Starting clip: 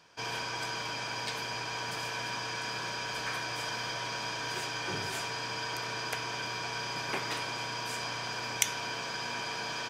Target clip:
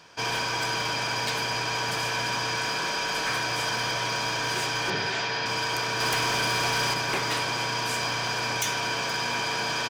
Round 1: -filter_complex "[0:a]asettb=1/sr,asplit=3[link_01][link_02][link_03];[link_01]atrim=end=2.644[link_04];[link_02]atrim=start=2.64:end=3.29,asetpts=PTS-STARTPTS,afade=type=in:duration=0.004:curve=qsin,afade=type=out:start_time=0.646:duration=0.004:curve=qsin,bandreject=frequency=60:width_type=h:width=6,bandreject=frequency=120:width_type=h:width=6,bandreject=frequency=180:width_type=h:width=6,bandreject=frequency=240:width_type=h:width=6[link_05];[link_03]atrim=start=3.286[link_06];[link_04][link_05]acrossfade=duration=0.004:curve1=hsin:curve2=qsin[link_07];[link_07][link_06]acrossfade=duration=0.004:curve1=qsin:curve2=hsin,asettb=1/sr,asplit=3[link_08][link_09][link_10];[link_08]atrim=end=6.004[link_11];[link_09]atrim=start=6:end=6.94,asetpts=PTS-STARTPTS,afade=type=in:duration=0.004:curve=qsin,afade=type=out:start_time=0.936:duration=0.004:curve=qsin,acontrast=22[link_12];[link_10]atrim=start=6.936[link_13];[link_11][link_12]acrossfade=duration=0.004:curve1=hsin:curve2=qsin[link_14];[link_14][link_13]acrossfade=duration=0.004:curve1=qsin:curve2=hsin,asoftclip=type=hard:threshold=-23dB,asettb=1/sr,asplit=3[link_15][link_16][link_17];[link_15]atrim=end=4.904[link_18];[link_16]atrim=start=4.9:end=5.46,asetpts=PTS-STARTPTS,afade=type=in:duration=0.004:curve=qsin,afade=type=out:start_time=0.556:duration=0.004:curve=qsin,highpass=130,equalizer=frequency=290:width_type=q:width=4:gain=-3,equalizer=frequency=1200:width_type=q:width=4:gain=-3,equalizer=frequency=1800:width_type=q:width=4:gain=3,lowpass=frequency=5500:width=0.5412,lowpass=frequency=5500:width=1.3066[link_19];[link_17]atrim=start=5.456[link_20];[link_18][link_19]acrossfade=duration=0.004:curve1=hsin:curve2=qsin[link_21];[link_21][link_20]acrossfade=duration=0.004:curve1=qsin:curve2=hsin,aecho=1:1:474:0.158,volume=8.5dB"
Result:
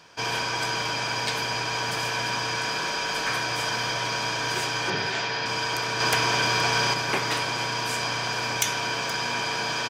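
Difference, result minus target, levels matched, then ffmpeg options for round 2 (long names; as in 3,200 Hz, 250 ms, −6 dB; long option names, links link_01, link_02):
hard clipping: distortion −6 dB
-filter_complex "[0:a]asettb=1/sr,asplit=3[link_01][link_02][link_03];[link_01]atrim=end=2.644[link_04];[link_02]atrim=start=2.64:end=3.29,asetpts=PTS-STARTPTS,afade=type=in:duration=0.004:curve=qsin,afade=type=out:start_time=0.646:duration=0.004:curve=qsin,bandreject=frequency=60:width_type=h:width=6,bandreject=frequency=120:width_type=h:width=6,bandreject=frequency=180:width_type=h:width=6,bandreject=frequency=240:width_type=h:width=6[link_05];[link_03]atrim=start=3.286[link_06];[link_04][link_05]acrossfade=duration=0.004:curve1=hsin:curve2=qsin[link_07];[link_07][link_06]acrossfade=duration=0.004:curve1=qsin:curve2=hsin,asettb=1/sr,asplit=3[link_08][link_09][link_10];[link_08]atrim=end=6.004[link_11];[link_09]atrim=start=6:end=6.94,asetpts=PTS-STARTPTS,afade=type=in:duration=0.004:curve=qsin,afade=type=out:start_time=0.936:duration=0.004:curve=qsin,acontrast=22[link_12];[link_10]atrim=start=6.936[link_13];[link_11][link_12]acrossfade=duration=0.004:curve1=hsin:curve2=qsin[link_14];[link_14][link_13]acrossfade=duration=0.004:curve1=qsin:curve2=hsin,asoftclip=type=hard:threshold=-31dB,asettb=1/sr,asplit=3[link_15][link_16][link_17];[link_15]atrim=end=4.904[link_18];[link_16]atrim=start=4.9:end=5.46,asetpts=PTS-STARTPTS,afade=type=in:duration=0.004:curve=qsin,afade=type=out:start_time=0.556:duration=0.004:curve=qsin,highpass=130,equalizer=frequency=290:width_type=q:width=4:gain=-3,equalizer=frequency=1200:width_type=q:width=4:gain=-3,equalizer=frequency=1800:width_type=q:width=4:gain=3,lowpass=frequency=5500:width=0.5412,lowpass=frequency=5500:width=1.3066[link_19];[link_17]atrim=start=5.456[link_20];[link_18][link_19]acrossfade=duration=0.004:curve1=hsin:curve2=qsin[link_21];[link_21][link_20]acrossfade=duration=0.004:curve1=qsin:curve2=hsin,aecho=1:1:474:0.158,volume=8.5dB"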